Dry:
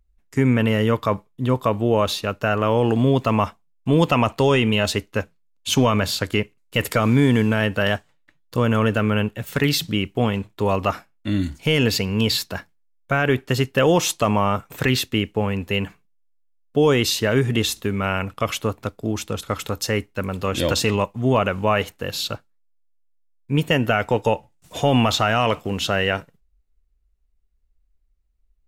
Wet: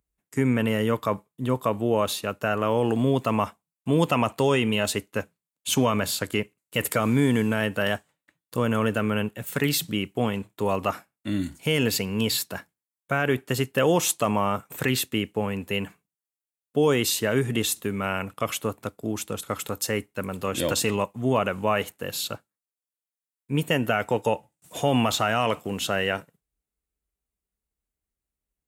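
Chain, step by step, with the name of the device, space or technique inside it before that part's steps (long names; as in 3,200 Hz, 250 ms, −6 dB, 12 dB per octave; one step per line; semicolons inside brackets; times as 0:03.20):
budget condenser microphone (high-pass filter 120 Hz; high shelf with overshoot 6,800 Hz +6 dB, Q 1.5)
level −4 dB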